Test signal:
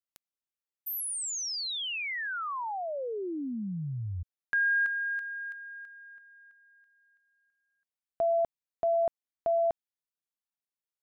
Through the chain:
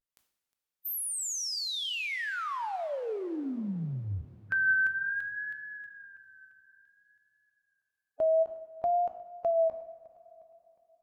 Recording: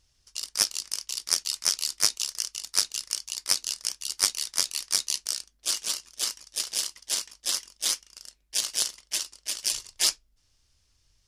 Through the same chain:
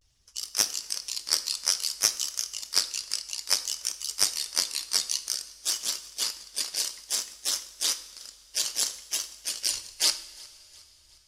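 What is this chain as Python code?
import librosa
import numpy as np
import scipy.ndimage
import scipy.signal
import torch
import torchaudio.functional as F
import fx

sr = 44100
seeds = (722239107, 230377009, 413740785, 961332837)

p1 = fx.spec_quant(x, sr, step_db=15)
p2 = fx.vibrato(p1, sr, rate_hz=0.58, depth_cents=82.0)
p3 = p2 + fx.echo_feedback(p2, sr, ms=359, feedback_pct=48, wet_db=-24, dry=0)
p4 = fx.rev_double_slope(p3, sr, seeds[0], early_s=0.58, late_s=3.8, knee_db=-16, drr_db=10.0)
y = fx.end_taper(p4, sr, db_per_s=440.0)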